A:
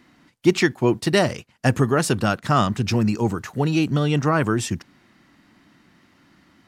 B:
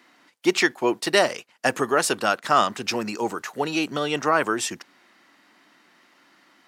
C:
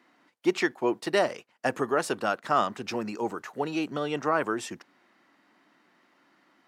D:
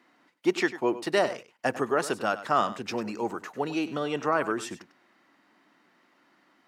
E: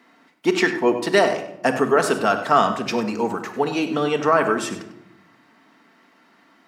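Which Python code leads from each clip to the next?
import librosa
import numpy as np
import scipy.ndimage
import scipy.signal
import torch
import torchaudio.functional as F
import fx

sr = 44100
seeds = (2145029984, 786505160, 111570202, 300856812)

y1 = scipy.signal.sosfilt(scipy.signal.butter(2, 450.0, 'highpass', fs=sr, output='sos'), x)
y1 = y1 * 10.0 ** (2.0 / 20.0)
y2 = fx.high_shelf(y1, sr, hz=2100.0, db=-9.5)
y2 = y2 * 10.0 ** (-3.5 / 20.0)
y3 = y2 + 10.0 ** (-14.5 / 20.0) * np.pad(y2, (int(98 * sr / 1000.0), 0))[:len(y2)]
y4 = fx.room_shoebox(y3, sr, seeds[0], volume_m3=2700.0, walls='furnished', distance_m=1.6)
y4 = y4 * 10.0 ** (7.0 / 20.0)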